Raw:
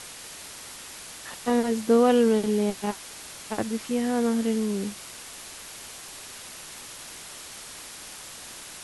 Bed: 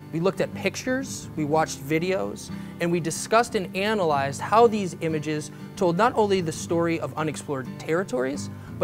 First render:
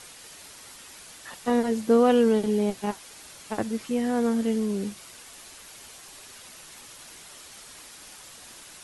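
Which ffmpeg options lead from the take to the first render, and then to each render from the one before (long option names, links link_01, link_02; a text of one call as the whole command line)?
ffmpeg -i in.wav -af "afftdn=noise_reduction=6:noise_floor=-42" out.wav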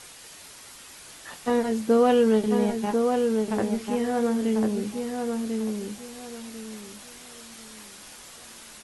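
ffmpeg -i in.wav -filter_complex "[0:a]asplit=2[link_01][link_02];[link_02]adelay=23,volume=-11dB[link_03];[link_01][link_03]amix=inputs=2:normalize=0,asplit=2[link_04][link_05];[link_05]adelay=1044,lowpass=frequency=2000:poles=1,volume=-4dB,asplit=2[link_06][link_07];[link_07]adelay=1044,lowpass=frequency=2000:poles=1,volume=0.28,asplit=2[link_08][link_09];[link_09]adelay=1044,lowpass=frequency=2000:poles=1,volume=0.28,asplit=2[link_10][link_11];[link_11]adelay=1044,lowpass=frequency=2000:poles=1,volume=0.28[link_12];[link_04][link_06][link_08][link_10][link_12]amix=inputs=5:normalize=0" out.wav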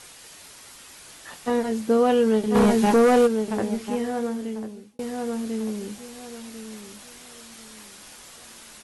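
ffmpeg -i in.wav -filter_complex "[0:a]asplit=3[link_01][link_02][link_03];[link_01]afade=type=out:start_time=2.54:duration=0.02[link_04];[link_02]aeval=exprs='0.237*sin(PI/2*2*val(0)/0.237)':channel_layout=same,afade=type=in:start_time=2.54:duration=0.02,afade=type=out:start_time=3.26:duration=0.02[link_05];[link_03]afade=type=in:start_time=3.26:duration=0.02[link_06];[link_04][link_05][link_06]amix=inputs=3:normalize=0,asplit=2[link_07][link_08];[link_07]atrim=end=4.99,asetpts=PTS-STARTPTS,afade=type=out:start_time=3.94:duration=1.05[link_09];[link_08]atrim=start=4.99,asetpts=PTS-STARTPTS,afade=type=in:duration=0.004:curve=hsin[link_10];[link_09][link_10]concat=n=2:v=0:a=1" out.wav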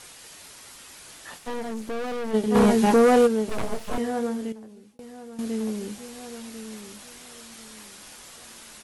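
ffmpeg -i in.wav -filter_complex "[0:a]asplit=3[link_01][link_02][link_03];[link_01]afade=type=out:start_time=1.37:duration=0.02[link_04];[link_02]aeval=exprs='(tanh(28.2*val(0)+0.65)-tanh(0.65))/28.2':channel_layout=same,afade=type=in:start_time=1.37:duration=0.02,afade=type=out:start_time=2.33:duration=0.02[link_05];[link_03]afade=type=in:start_time=2.33:duration=0.02[link_06];[link_04][link_05][link_06]amix=inputs=3:normalize=0,asettb=1/sr,asplit=3[link_07][link_08][link_09];[link_07]atrim=end=3.494[link_10];[link_08]atrim=start=3.49:end=3.98,asetpts=PTS-STARTPTS,afade=type=in:duration=0.004:curve=qsin,afade=type=out:start_time=0.486:duration=0.004:curve=qsin,aeval=exprs='abs(val(0))':channel_layout=same[link_11];[link_09]atrim=start=3.976[link_12];[link_10][link_11]acrossfade=duration=0.004:curve1=hsin:curve2=qsin[link_13];[link_13][link_12]acrossfade=duration=0.004:curve1=qsin:curve2=hsin,asettb=1/sr,asplit=3[link_14][link_15][link_16];[link_14]atrim=end=4.524[link_17];[link_15]atrim=start=4.52:end=5.39,asetpts=PTS-STARTPTS,afade=type=in:duration=0.004:curve=qsin,afade=type=out:start_time=0.866:duration=0.004:curve=qsin,acompressor=threshold=-49dB:ratio=2:attack=3.2:release=140:knee=1:detection=peak[link_18];[link_16]atrim=start=5.386[link_19];[link_17][link_18]acrossfade=duration=0.004:curve1=hsin:curve2=qsin[link_20];[link_20][link_19]acrossfade=duration=0.004:curve1=qsin:curve2=hsin" out.wav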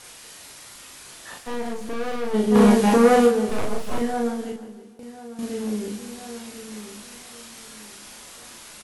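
ffmpeg -i in.wav -filter_complex "[0:a]asplit=2[link_01][link_02];[link_02]adelay=38,volume=-2dB[link_03];[link_01][link_03]amix=inputs=2:normalize=0,aecho=1:1:159|318|477|636|795:0.2|0.102|0.0519|0.0265|0.0135" out.wav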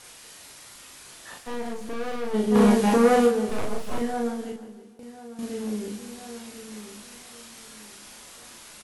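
ffmpeg -i in.wav -af "volume=-3dB" out.wav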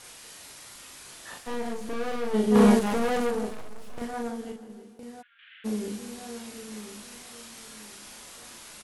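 ffmpeg -i in.wav -filter_complex "[0:a]asettb=1/sr,asplit=3[link_01][link_02][link_03];[link_01]atrim=end=2.794[link_04];[link_02]atrim=start=2.79:end=4.7,asetpts=PTS-STARTPTS,afade=type=in:duration=0.004:curve=qsin,afade=type=out:start_time=1.906:duration=0.004:curve=qsin,aeval=exprs='(tanh(15.8*val(0)+0.65)-tanh(0.65))/15.8':channel_layout=same[link_05];[link_03]atrim=start=4.696[link_06];[link_04][link_05]acrossfade=duration=0.004:curve1=hsin:curve2=qsin[link_07];[link_07][link_06]acrossfade=duration=0.004:curve1=qsin:curve2=hsin,asplit=3[link_08][link_09][link_10];[link_08]afade=type=out:start_time=5.21:duration=0.02[link_11];[link_09]asuperpass=centerf=2200:order=12:qfactor=1.1,afade=type=in:start_time=5.21:duration=0.02,afade=type=out:start_time=5.64:duration=0.02[link_12];[link_10]afade=type=in:start_time=5.64:duration=0.02[link_13];[link_11][link_12][link_13]amix=inputs=3:normalize=0" out.wav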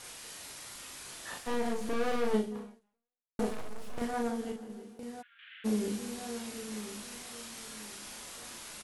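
ffmpeg -i in.wav -filter_complex "[0:a]asplit=2[link_01][link_02];[link_01]atrim=end=3.39,asetpts=PTS-STARTPTS,afade=type=out:start_time=2.33:duration=1.06:curve=exp[link_03];[link_02]atrim=start=3.39,asetpts=PTS-STARTPTS,afade=type=in:duration=0.004:curve=hsin[link_04];[link_03][link_04]concat=n=2:v=0:a=1" out.wav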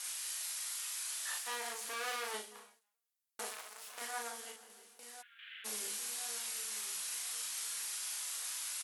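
ffmpeg -i in.wav -af "highpass=1100,aemphasis=mode=production:type=cd" out.wav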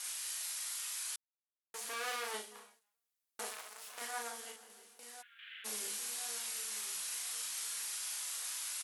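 ffmpeg -i in.wav -filter_complex "[0:a]asplit=3[link_01][link_02][link_03];[link_01]atrim=end=1.16,asetpts=PTS-STARTPTS,afade=type=out:start_time=1.156:duration=0.004:curve=hsin[link_04];[link_02]atrim=start=1.16:end=1.74,asetpts=PTS-STARTPTS,volume=0[link_05];[link_03]atrim=start=1.74,asetpts=PTS-STARTPTS,afade=type=in:duration=0.004:curve=hsin[link_06];[link_04][link_05][link_06]concat=n=3:v=0:a=1" out.wav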